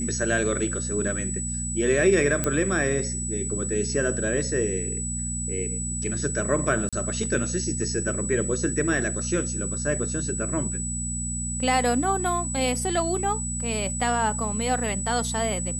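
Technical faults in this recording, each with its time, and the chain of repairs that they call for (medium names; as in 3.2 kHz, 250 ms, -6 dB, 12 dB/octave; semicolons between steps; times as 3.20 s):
hum 60 Hz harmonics 4 -32 dBFS
whine 7.9 kHz -30 dBFS
2.44 s: pop -9 dBFS
6.89–6.93 s: dropout 36 ms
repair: de-click; de-hum 60 Hz, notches 4; band-stop 7.9 kHz, Q 30; interpolate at 6.89 s, 36 ms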